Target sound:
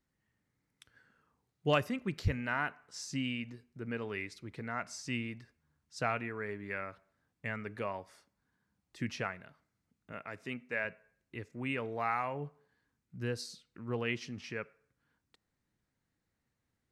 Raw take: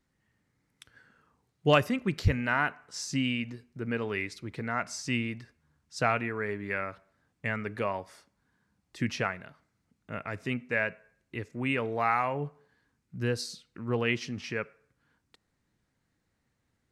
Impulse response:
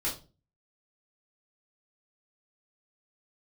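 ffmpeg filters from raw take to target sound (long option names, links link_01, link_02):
-filter_complex "[0:a]asettb=1/sr,asplit=3[link_01][link_02][link_03];[link_01]atrim=end=10.124[link_04];[link_02]atrim=start=10.12:end=10.85,asetpts=PTS-STARTPTS,afade=type=in:duration=0.004:curve=qsin,afade=type=out:start_time=0.726:duration=0.004:curve=qsin,highpass=frequency=220:poles=1[link_05];[link_03]atrim=start=10.846[link_06];[link_04][link_05]acrossfade=duration=0.004:curve1=hsin:curve2=qsin[link_07];[link_07][link_06]acrossfade=duration=0.004:curve1=qsin:curve2=hsin,volume=-6.5dB"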